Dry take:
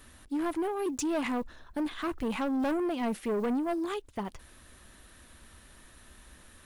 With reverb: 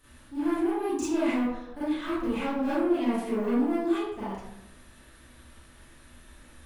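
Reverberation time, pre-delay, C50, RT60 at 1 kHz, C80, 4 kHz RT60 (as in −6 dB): 0.85 s, 29 ms, −2.5 dB, 0.75 s, 3.0 dB, 0.50 s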